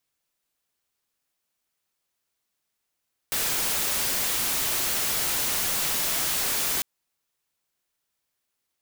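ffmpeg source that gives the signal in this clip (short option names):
-f lavfi -i "anoisesrc=c=white:a=0.0868:d=3.5:r=44100:seed=1"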